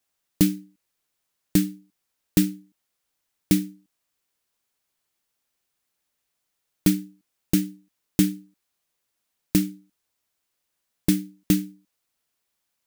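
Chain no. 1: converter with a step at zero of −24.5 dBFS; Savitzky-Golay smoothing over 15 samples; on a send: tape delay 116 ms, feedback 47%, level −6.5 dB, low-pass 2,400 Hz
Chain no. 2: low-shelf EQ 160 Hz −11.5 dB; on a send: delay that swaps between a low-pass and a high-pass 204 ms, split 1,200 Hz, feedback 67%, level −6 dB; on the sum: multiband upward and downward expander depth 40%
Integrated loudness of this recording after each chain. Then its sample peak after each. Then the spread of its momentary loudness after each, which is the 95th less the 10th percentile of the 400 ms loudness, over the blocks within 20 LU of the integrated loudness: −27.0, −26.5 LKFS; −5.5, −4.0 dBFS; 12, 19 LU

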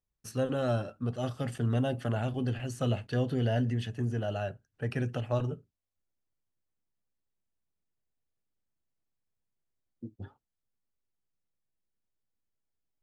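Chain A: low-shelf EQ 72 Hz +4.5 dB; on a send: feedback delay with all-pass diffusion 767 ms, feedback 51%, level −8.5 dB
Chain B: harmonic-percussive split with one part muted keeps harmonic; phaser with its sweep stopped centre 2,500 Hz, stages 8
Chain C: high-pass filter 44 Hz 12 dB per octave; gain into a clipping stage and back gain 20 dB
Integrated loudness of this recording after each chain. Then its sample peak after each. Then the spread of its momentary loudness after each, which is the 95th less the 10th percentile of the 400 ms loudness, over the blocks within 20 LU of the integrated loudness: −31.5, −35.5, −32.5 LKFS; −16.0, −22.0, −20.0 dBFS; 19, 9, 15 LU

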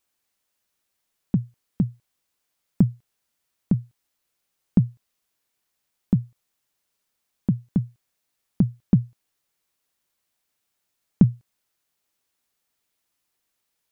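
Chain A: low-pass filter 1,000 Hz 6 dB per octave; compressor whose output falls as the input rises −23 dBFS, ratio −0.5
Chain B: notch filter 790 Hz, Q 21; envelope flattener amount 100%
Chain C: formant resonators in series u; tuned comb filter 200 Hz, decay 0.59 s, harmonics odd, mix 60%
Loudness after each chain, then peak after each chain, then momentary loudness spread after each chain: −31.5, −16.0, −42.0 LKFS; −15.0, −2.5, −18.5 dBFS; 12, 20, 18 LU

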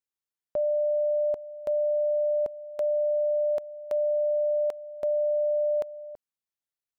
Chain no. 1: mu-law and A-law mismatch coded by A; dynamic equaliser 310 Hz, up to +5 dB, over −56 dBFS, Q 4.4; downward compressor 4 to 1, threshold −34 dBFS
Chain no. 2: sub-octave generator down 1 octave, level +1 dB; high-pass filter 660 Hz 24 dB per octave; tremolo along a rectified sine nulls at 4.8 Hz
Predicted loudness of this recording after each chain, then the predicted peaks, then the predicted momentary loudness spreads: −35.5, −35.5 LKFS; −23.0, −21.0 dBFS; 6, 7 LU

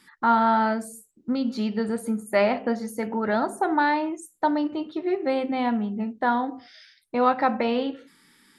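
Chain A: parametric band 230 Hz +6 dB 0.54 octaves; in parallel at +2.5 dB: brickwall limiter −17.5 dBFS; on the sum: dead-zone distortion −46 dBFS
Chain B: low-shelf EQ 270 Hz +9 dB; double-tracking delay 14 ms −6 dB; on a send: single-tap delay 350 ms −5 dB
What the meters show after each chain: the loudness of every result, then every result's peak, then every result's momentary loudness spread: −17.5, −20.5 LKFS; −4.5, −5.5 dBFS; 7, 7 LU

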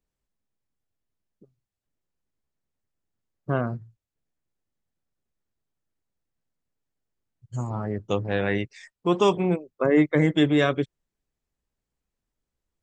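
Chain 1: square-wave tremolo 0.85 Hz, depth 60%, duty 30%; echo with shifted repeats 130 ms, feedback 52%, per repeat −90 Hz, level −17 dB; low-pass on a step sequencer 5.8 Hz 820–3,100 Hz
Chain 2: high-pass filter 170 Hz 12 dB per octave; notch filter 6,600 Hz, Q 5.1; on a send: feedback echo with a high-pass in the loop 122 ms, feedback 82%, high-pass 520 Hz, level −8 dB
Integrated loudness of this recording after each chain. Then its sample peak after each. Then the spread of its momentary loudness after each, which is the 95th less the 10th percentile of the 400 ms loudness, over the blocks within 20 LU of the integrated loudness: −25.5, −24.5 LKFS; −5.5, −7.0 dBFS; 17, 18 LU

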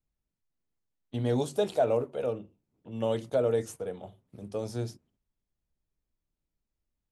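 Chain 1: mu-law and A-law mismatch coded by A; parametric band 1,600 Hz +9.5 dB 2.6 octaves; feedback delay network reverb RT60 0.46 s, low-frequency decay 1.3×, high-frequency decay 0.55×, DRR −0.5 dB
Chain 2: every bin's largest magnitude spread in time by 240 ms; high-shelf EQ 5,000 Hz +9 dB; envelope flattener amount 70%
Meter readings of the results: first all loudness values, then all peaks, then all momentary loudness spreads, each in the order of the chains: −24.0, −20.5 LKFS; −6.5, −5.5 dBFS; 16, 20 LU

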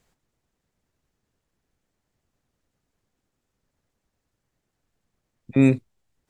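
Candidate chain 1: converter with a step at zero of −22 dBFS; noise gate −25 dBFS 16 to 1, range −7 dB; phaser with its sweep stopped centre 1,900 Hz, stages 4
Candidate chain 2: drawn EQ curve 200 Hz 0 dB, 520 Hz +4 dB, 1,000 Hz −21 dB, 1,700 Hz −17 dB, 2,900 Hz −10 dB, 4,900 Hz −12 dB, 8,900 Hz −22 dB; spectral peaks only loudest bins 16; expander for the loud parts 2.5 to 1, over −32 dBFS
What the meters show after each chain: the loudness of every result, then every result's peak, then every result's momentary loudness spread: −30.0, −21.0 LKFS; −6.0, −5.5 dBFS; 18, 12 LU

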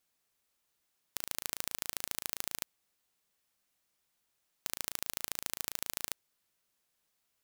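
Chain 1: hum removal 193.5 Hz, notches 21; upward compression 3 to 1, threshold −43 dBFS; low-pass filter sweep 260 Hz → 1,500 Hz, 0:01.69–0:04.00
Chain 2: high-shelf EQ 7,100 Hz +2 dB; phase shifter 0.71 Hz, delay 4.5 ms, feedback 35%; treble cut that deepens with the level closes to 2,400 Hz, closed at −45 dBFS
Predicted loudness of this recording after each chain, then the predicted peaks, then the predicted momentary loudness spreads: −48.5, −47.0 LKFS; −22.0, −10.5 dBFS; 20, 6 LU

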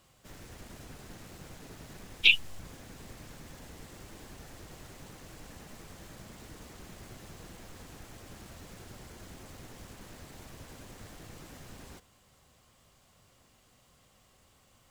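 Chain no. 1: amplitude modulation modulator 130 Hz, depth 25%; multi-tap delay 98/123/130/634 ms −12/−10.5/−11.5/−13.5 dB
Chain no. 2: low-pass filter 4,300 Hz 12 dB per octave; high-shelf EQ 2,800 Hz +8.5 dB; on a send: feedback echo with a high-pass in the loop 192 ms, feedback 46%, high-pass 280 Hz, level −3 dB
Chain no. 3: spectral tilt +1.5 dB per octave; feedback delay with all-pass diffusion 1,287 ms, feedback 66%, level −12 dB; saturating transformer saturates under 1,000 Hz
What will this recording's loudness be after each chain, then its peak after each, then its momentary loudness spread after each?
−27.5, −22.0, −41.5 LKFS; −6.0, −3.0, −14.0 dBFS; 15, 22, 20 LU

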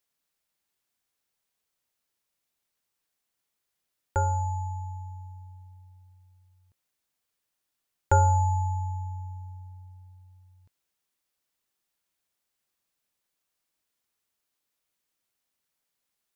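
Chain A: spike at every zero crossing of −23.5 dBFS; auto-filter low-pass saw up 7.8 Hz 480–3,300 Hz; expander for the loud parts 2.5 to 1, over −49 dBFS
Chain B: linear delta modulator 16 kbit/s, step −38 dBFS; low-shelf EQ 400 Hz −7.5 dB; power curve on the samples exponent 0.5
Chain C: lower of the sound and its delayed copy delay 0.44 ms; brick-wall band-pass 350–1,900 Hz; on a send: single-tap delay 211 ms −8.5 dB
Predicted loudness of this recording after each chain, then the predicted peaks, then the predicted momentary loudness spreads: −28.0, −31.0, −33.5 LKFS; −5.5, −18.5, −14.5 dBFS; 20, 9, 21 LU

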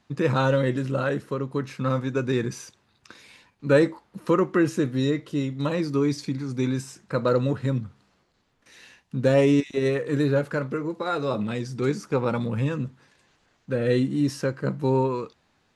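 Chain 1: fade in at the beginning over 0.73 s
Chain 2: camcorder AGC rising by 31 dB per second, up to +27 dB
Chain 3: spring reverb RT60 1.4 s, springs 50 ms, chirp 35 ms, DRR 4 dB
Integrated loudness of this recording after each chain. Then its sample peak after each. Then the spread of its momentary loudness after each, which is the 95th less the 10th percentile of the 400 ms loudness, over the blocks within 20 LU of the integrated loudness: −25.5, −23.0, −24.0 LKFS; −6.5, −2.0, −5.0 dBFS; 10, 7, 11 LU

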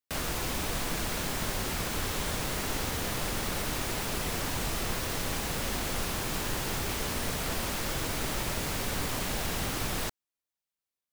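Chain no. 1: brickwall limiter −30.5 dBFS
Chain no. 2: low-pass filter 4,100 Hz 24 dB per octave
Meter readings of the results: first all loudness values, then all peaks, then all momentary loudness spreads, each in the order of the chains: −39.0, −34.0 LKFS; −30.5, −19.5 dBFS; 1, 0 LU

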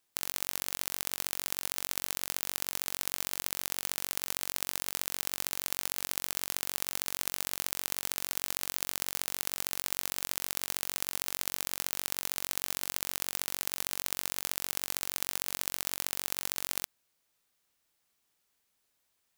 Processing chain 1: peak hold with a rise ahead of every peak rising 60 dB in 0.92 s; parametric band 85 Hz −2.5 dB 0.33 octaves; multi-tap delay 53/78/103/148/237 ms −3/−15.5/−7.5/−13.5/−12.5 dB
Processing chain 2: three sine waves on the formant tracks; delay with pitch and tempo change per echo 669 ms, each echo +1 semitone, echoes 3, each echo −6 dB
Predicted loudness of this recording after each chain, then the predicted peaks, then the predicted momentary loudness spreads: −27.0, −34.0 LKFS; −1.5, −18.0 dBFS; 0, 3 LU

